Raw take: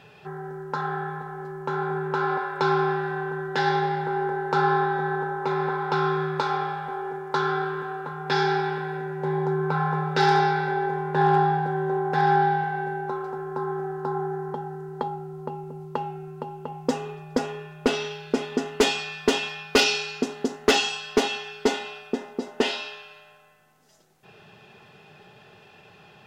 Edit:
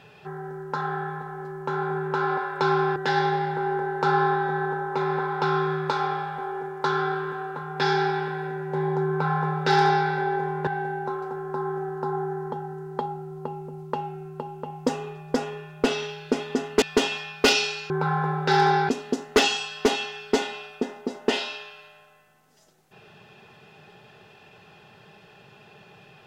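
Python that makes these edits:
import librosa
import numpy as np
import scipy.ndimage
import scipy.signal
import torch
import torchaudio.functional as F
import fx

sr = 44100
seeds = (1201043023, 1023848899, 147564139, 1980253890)

y = fx.edit(x, sr, fx.cut(start_s=2.96, length_s=0.5),
    fx.duplicate(start_s=9.59, length_s=0.99, to_s=20.21),
    fx.cut(start_s=11.17, length_s=1.52),
    fx.cut(start_s=18.84, length_s=0.29), tone=tone)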